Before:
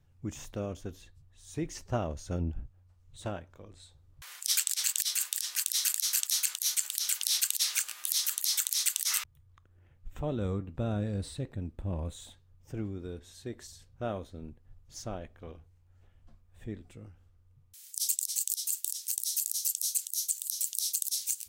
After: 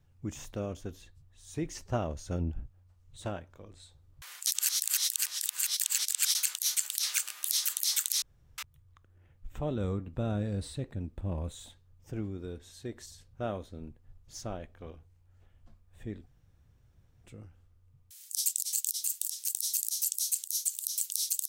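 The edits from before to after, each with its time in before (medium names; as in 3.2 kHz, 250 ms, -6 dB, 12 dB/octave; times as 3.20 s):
4.47–6.35 s: reverse
7.03–7.64 s: delete
8.83–9.19 s: room tone
16.87 s: insert room tone 0.98 s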